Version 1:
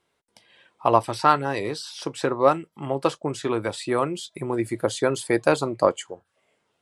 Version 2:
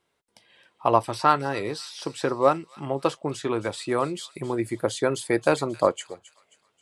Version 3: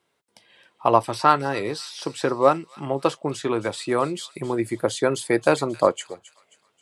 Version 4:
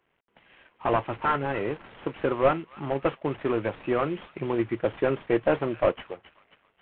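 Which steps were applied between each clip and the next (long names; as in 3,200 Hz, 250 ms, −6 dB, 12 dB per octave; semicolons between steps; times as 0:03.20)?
delay with a high-pass on its return 267 ms, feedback 40%, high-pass 2,500 Hz, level −14 dB; level −1.5 dB
high-pass filter 96 Hz; level +2.5 dB
variable-slope delta modulation 16 kbit/s; level −1 dB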